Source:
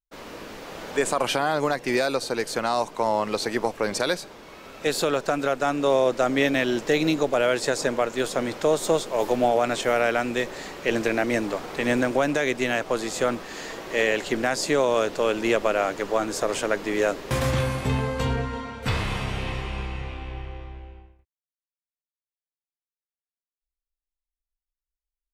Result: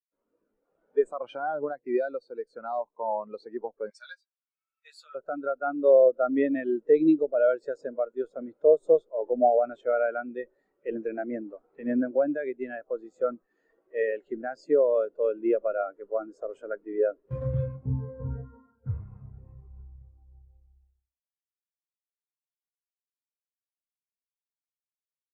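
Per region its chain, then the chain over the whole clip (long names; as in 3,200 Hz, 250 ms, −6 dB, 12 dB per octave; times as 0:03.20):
0:03.90–0:05.15: high-pass filter 1,400 Hz + high-shelf EQ 6,600 Hz +4.5 dB + double-tracking delay 13 ms −5 dB
0:17.76–0:20.54: running median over 15 samples + high-pass filter 45 Hz
whole clip: parametric band 1,400 Hz +4 dB 0.26 octaves; every bin expanded away from the loudest bin 2.5 to 1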